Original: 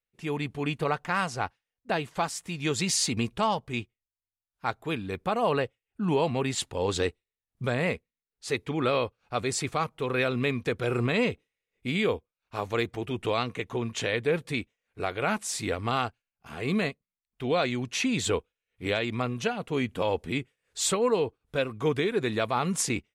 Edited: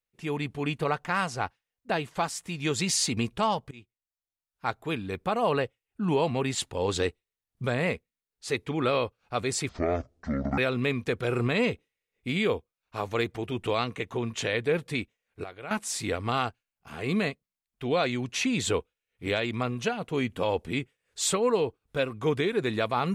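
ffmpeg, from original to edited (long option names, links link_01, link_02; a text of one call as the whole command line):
ffmpeg -i in.wav -filter_complex "[0:a]asplit=6[link_01][link_02][link_03][link_04][link_05][link_06];[link_01]atrim=end=3.71,asetpts=PTS-STARTPTS,afade=type=out:start_time=3.706:duration=0.004:curve=hsin:silence=0.0841395[link_07];[link_02]atrim=start=3.71:end=9.694,asetpts=PTS-STARTPTS,afade=type=in:duration=0.97:silence=0.0841395[link_08];[link_03]atrim=start=9.69:end=10.17,asetpts=PTS-STARTPTS,asetrate=23814,aresample=44100[link_09];[link_04]atrim=start=10.166:end=15.032[link_10];[link_05]atrim=start=15.028:end=15.302,asetpts=PTS-STARTPTS,volume=-12dB[link_11];[link_06]atrim=start=15.298[link_12];[link_07][link_08]concat=n=2:v=0:a=1[link_13];[link_13][link_09]acrossfade=duration=0.004:curve1=hsin:curve2=hsin[link_14];[link_14][link_10]acrossfade=duration=0.004:curve1=hsin:curve2=hsin[link_15];[link_15][link_11]acrossfade=duration=0.004:curve1=hsin:curve2=hsin[link_16];[link_16][link_12]acrossfade=duration=0.004:curve1=hsin:curve2=hsin" out.wav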